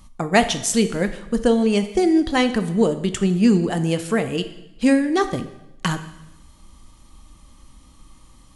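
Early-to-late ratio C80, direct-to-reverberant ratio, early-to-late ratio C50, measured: 14.0 dB, 9.0 dB, 12.0 dB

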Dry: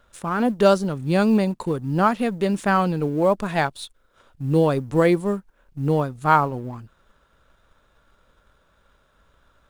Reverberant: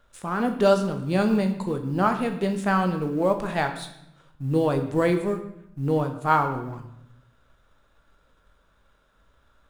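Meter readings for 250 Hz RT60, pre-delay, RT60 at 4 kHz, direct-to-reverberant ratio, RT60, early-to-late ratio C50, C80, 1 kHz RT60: 1.1 s, 15 ms, 0.65 s, 5.0 dB, 0.80 s, 9.5 dB, 12.0 dB, 0.75 s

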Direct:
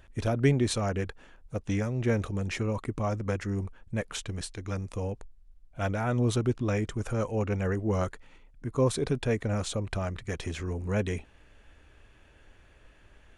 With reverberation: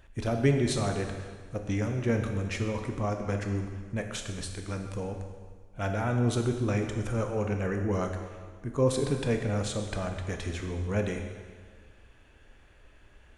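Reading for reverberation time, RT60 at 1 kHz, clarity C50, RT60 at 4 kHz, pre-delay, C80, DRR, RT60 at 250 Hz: 1.6 s, 1.6 s, 6.0 dB, 1.5 s, 7 ms, 7.0 dB, 4.0 dB, 1.7 s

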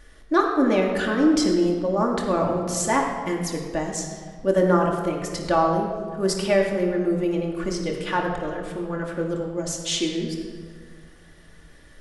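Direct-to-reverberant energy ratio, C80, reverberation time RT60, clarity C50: -1.0 dB, 5.0 dB, 1.7 s, 3.5 dB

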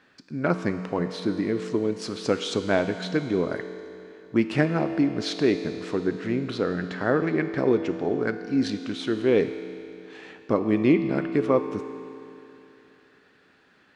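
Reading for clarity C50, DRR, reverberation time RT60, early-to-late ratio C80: 9.0 dB, 8.0 dB, 2.9 s, 10.0 dB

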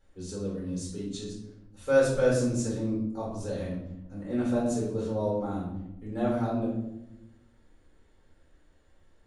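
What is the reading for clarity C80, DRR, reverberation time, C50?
6.0 dB, -6.5 dB, 0.90 s, 2.0 dB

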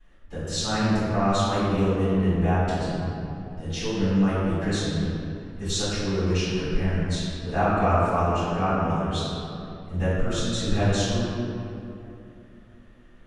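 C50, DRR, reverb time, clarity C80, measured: -4.0 dB, -17.0 dB, 2.8 s, -1.5 dB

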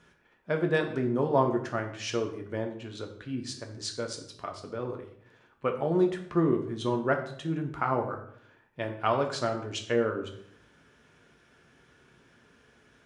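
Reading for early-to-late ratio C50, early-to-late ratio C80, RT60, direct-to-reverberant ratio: 9.5 dB, 12.5 dB, 0.65 s, 3.0 dB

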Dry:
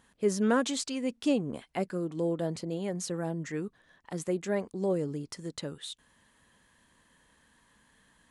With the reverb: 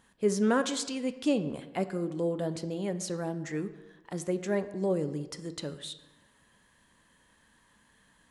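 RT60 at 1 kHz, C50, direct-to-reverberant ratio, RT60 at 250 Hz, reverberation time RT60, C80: 1.1 s, 13.5 dB, 10.5 dB, 1.2 s, 1.1 s, 15.5 dB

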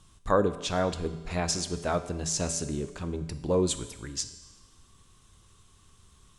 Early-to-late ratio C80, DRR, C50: 13.0 dB, 9.0 dB, 11.5 dB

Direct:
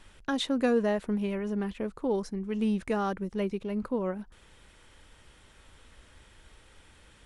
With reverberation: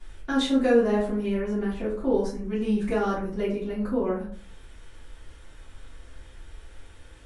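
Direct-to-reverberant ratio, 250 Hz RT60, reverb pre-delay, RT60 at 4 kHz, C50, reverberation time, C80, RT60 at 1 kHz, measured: -13.0 dB, 0.60 s, 3 ms, 0.25 s, 5.0 dB, 0.45 s, 10.0 dB, 0.45 s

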